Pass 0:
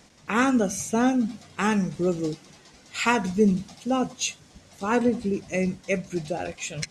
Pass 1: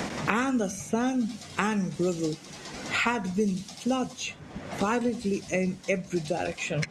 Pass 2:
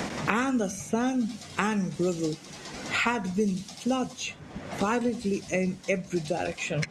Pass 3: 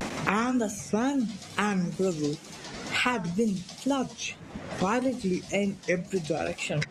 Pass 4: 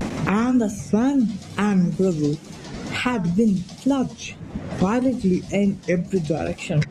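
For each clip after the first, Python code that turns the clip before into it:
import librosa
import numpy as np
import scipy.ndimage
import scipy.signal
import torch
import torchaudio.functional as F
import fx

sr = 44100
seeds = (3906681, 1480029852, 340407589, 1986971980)

y1 = fx.band_squash(x, sr, depth_pct=100)
y1 = y1 * 10.0 ** (-4.0 / 20.0)
y2 = y1
y3 = fx.wow_flutter(y2, sr, seeds[0], rate_hz=2.1, depth_cents=150.0)
y4 = fx.low_shelf(y3, sr, hz=400.0, db=12.0)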